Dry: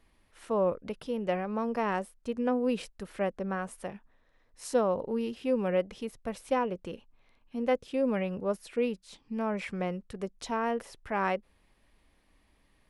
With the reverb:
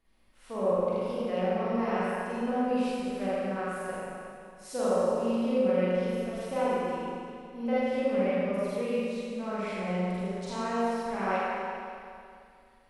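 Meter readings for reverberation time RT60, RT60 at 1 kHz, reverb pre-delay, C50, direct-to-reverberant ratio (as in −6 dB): 2.4 s, 2.4 s, 39 ms, −6.0 dB, −11.0 dB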